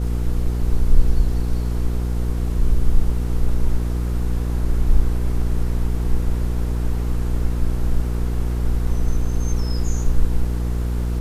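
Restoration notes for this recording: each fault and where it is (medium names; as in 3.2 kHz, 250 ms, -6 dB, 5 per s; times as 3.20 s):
hum 60 Hz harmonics 8 -22 dBFS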